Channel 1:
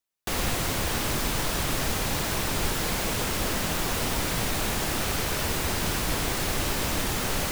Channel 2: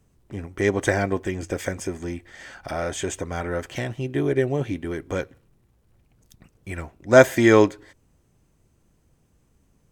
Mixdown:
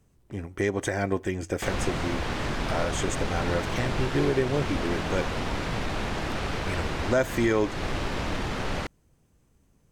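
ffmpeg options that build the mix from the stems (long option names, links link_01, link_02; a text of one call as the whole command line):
ffmpeg -i stem1.wav -i stem2.wav -filter_complex "[0:a]adynamicsmooth=sensitivity=1:basefreq=3200,adelay=1350,volume=-0.5dB[link_01];[1:a]volume=-1.5dB[link_02];[link_01][link_02]amix=inputs=2:normalize=0,alimiter=limit=-14dB:level=0:latency=1:release=215" out.wav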